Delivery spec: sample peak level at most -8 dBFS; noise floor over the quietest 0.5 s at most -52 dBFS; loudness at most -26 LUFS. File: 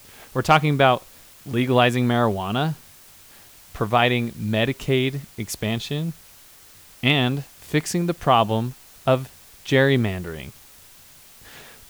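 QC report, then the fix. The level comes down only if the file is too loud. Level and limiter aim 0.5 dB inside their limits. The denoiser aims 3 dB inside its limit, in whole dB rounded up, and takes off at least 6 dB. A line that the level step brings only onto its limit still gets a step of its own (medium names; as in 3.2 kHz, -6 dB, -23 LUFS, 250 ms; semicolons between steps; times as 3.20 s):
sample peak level -4.0 dBFS: fail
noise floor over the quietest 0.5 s -48 dBFS: fail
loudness -22.0 LUFS: fail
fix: trim -4.5 dB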